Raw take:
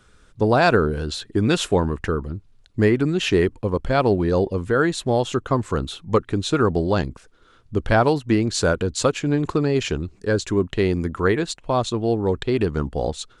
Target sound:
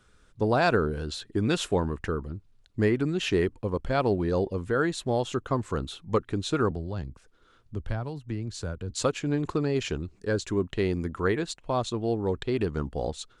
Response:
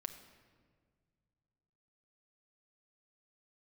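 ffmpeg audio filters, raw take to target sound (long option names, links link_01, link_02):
-filter_complex "[0:a]asettb=1/sr,asplit=3[link_01][link_02][link_03];[link_01]atrim=end=6.714[link_04];[link_02]atrim=start=6.71:end=8.9,asetpts=PTS-STARTPTS,afade=type=in:duration=0.004:curve=qsin,afade=type=out:start_time=2.186:duration=0.004:curve=qsin,acrossover=split=150[link_05][link_06];[link_06]acompressor=threshold=-35dB:ratio=2.5[link_07];[link_05][link_07]amix=inputs=2:normalize=0[link_08];[link_03]atrim=start=8.896[link_09];[link_04][link_08]acrossfade=duration=0.004:curve1=hsin:curve2=qsin[link_10];[link_10][link_09]acrossfade=duration=0.004:curve1=qsin:curve2=hsin,volume=-6.5dB"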